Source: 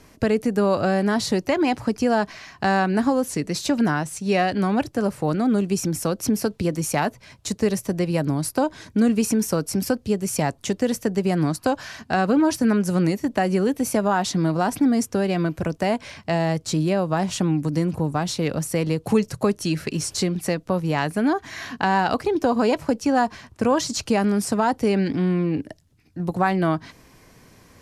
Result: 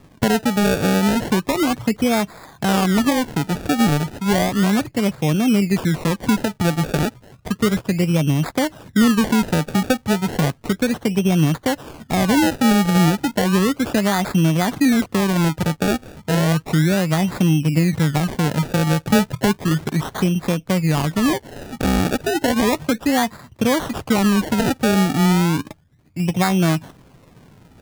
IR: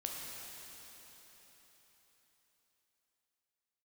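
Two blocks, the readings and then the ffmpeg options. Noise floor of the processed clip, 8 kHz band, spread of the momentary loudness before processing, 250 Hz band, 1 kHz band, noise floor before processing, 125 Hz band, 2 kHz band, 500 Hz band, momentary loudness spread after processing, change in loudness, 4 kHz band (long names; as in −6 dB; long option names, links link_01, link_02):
−51 dBFS, +2.0 dB, 5 LU, +4.0 dB, +1.0 dB, −53 dBFS, +6.5 dB, +4.0 dB, +0.5 dB, 6 LU, +3.5 dB, +6.0 dB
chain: -af "equalizer=frequency=150:width_type=o:width=1.3:gain=7.5,acrusher=samples=29:mix=1:aa=0.000001:lfo=1:lforange=29:lforate=0.33"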